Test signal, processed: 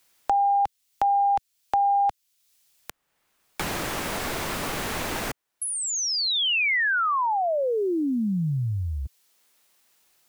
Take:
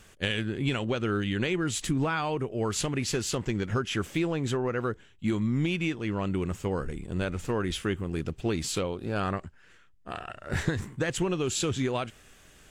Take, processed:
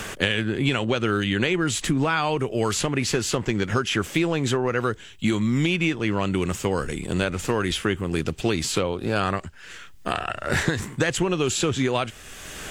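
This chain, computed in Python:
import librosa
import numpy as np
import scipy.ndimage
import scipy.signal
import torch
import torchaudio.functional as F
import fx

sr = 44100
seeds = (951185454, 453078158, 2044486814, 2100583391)

y = fx.low_shelf(x, sr, hz=390.0, db=-4.5)
y = fx.band_squash(y, sr, depth_pct=70)
y = y * librosa.db_to_amplitude(7.5)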